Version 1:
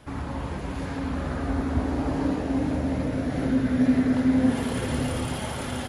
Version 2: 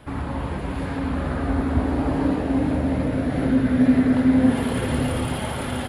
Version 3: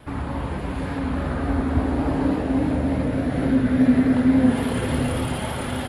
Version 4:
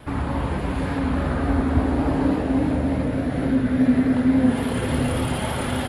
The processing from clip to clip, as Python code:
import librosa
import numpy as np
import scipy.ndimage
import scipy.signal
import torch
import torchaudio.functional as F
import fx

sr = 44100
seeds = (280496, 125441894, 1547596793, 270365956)

y1 = fx.peak_eq(x, sr, hz=6100.0, db=-11.0, octaves=0.64)
y1 = F.gain(torch.from_numpy(y1), 4.0).numpy()
y2 = fx.vibrato(y1, sr, rate_hz=3.5, depth_cents=35.0)
y3 = fx.rider(y2, sr, range_db=3, speed_s=2.0)